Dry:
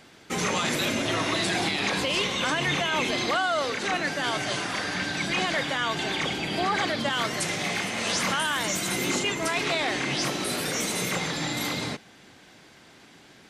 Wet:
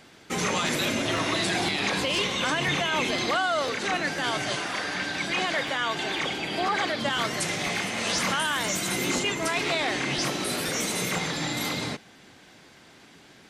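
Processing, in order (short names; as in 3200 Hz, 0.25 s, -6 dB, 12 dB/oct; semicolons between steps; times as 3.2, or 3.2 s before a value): 4.55–7.02 tone controls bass -6 dB, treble -2 dB; crackling interface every 0.50 s, samples 512, repeat, from 0.66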